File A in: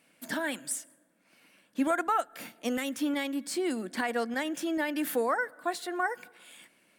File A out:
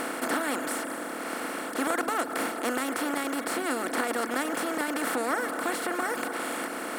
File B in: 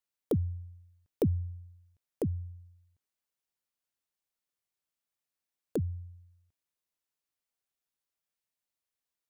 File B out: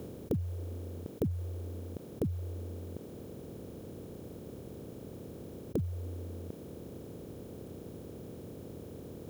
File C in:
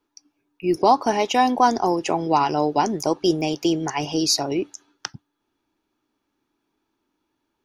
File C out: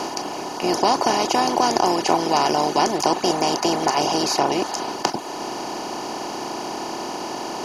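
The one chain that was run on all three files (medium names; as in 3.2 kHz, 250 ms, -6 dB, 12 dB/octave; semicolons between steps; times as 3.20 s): spectral levelling over time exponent 0.2; reverb removal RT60 0.64 s; trim -6.5 dB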